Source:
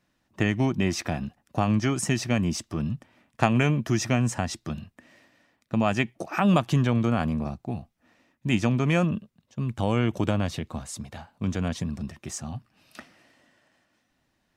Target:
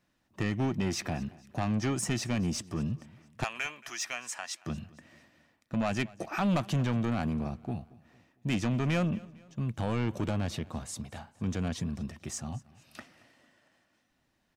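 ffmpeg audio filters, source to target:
ffmpeg -i in.wav -filter_complex "[0:a]asettb=1/sr,asplit=3[link_01][link_02][link_03];[link_01]atrim=end=3.444[link_04];[link_02]atrim=start=3.44:end=4.66,asetpts=PTS-STARTPTS,afade=type=in:duration=0.004:curve=qsin,afade=type=out:start_time=1.216:duration=0.004:curve=qsin,highpass=1200[link_05];[link_03]atrim=start=4.656[link_06];[link_04][link_05]acrossfade=duration=0.004:curve1=hsin:curve2=qsin[link_07];[link_07][link_06]acrossfade=duration=0.004:curve1=qsin:curve2=hsin,asoftclip=type=tanh:threshold=-20.5dB,aecho=1:1:227|454|681:0.0794|0.035|0.0154,volume=-2.5dB" out.wav

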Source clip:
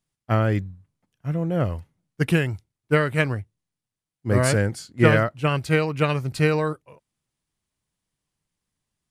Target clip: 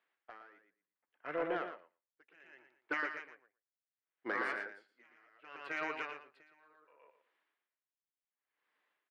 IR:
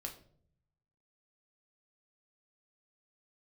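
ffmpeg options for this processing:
-af "highpass=frequency=390:width=0.5412,highpass=frequency=390:width=1.3066,afftfilt=real='re*lt(hypot(re,im),0.355)':imag='im*lt(hypot(re,im),0.355)':win_size=1024:overlap=0.75,firequalizer=gain_entry='entry(650,0);entry(1700,8);entry(6200,-25)':delay=0.05:min_phase=1,acompressor=threshold=-45dB:ratio=1.5,alimiter=level_in=4dB:limit=-24dB:level=0:latency=1:release=494,volume=-4dB,asoftclip=type=tanh:threshold=-28dB,aecho=1:1:116|232|348:0.631|0.101|0.0162,aeval=exprs='val(0)*pow(10,-31*(0.5-0.5*cos(2*PI*0.68*n/s))/20)':channel_layout=same,volume=4dB"

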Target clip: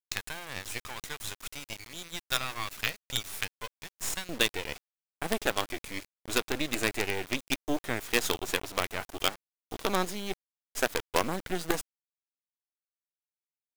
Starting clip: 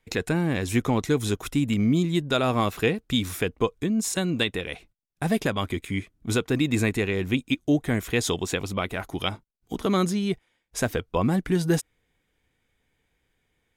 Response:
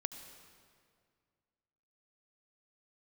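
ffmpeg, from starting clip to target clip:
-af "asetnsamples=nb_out_samples=441:pad=0,asendcmd='4.29 highpass f 370',highpass=1400,acrusher=bits=4:dc=4:mix=0:aa=0.000001"

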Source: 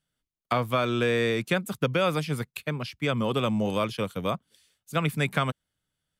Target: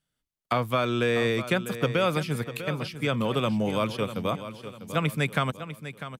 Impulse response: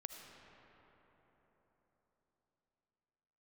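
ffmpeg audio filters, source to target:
-af "aecho=1:1:648|1296|1944|2592:0.251|0.098|0.0382|0.0149"

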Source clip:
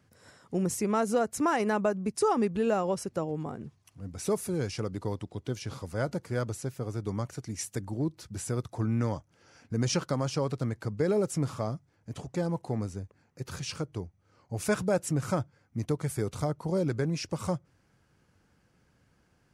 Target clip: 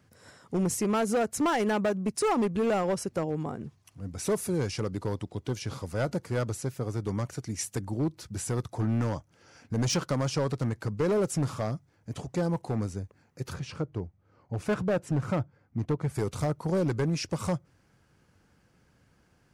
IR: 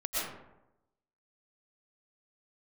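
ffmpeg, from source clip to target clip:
-filter_complex "[0:a]asplit=3[link_01][link_02][link_03];[link_01]afade=type=out:start_time=13.52:duration=0.02[link_04];[link_02]lowpass=frequency=1400:poles=1,afade=type=in:start_time=13.52:duration=0.02,afade=type=out:start_time=16.14:duration=0.02[link_05];[link_03]afade=type=in:start_time=16.14:duration=0.02[link_06];[link_04][link_05][link_06]amix=inputs=3:normalize=0,asoftclip=type=hard:threshold=-24.5dB,volume=2.5dB"

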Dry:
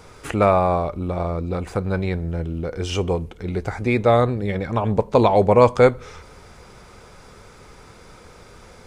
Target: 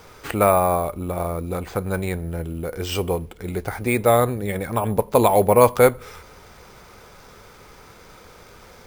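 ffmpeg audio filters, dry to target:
ffmpeg -i in.wav -af "acrusher=samples=4:mix=1:aa=0.000001,lowshelf=frequency=370:gain=-4.5,volume=1dB" out.wav

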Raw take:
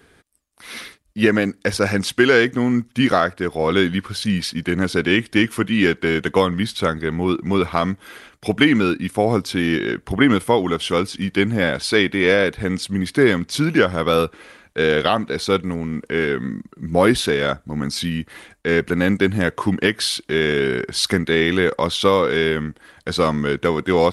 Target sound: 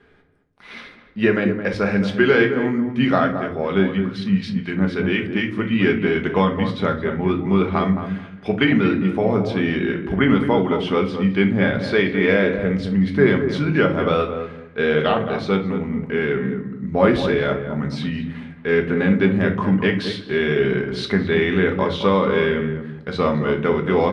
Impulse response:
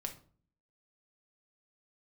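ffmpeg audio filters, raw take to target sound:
-filter_complex "[1:a]atrim=start_sample=2205[link_01];[0:a][link_01]afir=irnorm=-1:irlink=0,asettb=1/sr,asplit=3[link_02][link_03][link_04];[link_02]atrim=end=3.324[link_05];[link_03]atrim=start=3.32:end=5.71,asetpts=PTS-STARTPTS,afade=type=in:duration=0.004:curve=qsin,afade=type=out:start_time=2.386:duration=0.004:curve=qsin,acrossover=split=1500[link_06][link_07];[link_06]aeval=exprs='val(0)*(1-0.5/2+0.5/2*cos(2*PI*4*n/s))':channel_layout=same[link_08];[link_07]aeval=exprs='val(0)*(1-0.5/2-0.5/2*cos(2*PI*4*n/s))':channel_layout=same[link_09];[link_08][link_09]amix=inputs=2:normalize=0[link_10];[link_04]atrim=start=5.706[link_11];[link_05][link_10]acrossfade=duration=0.004:curve1=hsin:curve2=qsin[link_12];[link_12][link_11]acrossfade=duration=0.004:curve1=qsin:curve2=hsin,lowpass=2900,asplit=2[link_13][link_14];[link_14]adelay=217,lowpass=frequency=1100:poles=1,volume=-7dB,asplit=2[link_15][link_16];[link_16]adelay=217,lowpass=frequency=1100:poles=1,volume=0.22,asplit=2[link_17][link_18];[link_18]adelay=217,lowpass=frequency=1100:poles=1,volume=0.22[link_19];[link_13][link_15][link_17][link_19]amix=inputs=4:normalize=0"

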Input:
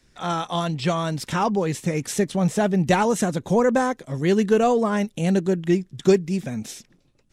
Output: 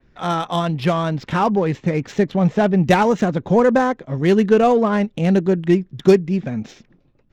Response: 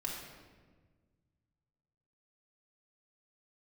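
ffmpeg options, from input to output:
-af "adynamicequalizer=threshold=0.00501:dfrequency=5800:dqfactor=1.3:tfrequency=5800:tqfactor=1.3:attack=5:release=100:ratio=0.375:range=2.5:mode=cutabove:tftype=bell,aresample=16000,aresample=44100,adynamicsmooth=sensitivity=3:basefreq=2400,volume=4.5dB"

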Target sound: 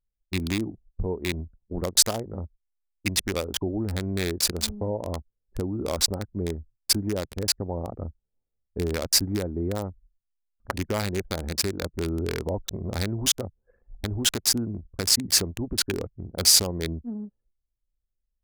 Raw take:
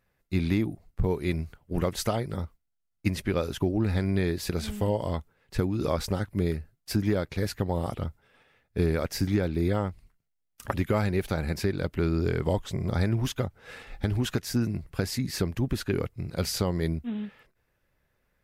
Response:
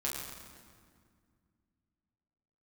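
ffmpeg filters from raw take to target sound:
-filter_complex "[0:a]lowpass=9800,anlmdn=2.51,equalizer=frequency=140:width_type=o:width=0.29:gain=-13,asplit=2[link_01][link_02];[link_02]alimiter=limit=-22.5dB:level=0:latency=1:release=75,volume=-2dB[link_03];[link_01][link_03]amix=inputs=2:normalize=0,crystalizer=i=9:c=0,acrossover=split=910[link_04][link_05];[link_05]aeval=exprs='val(0)*gte(abs(val(0)),0.119)':channel_layout=same[link_06];[link_04][link_06]amix=inputs=2:normalize=0,volume=-5.5dB"

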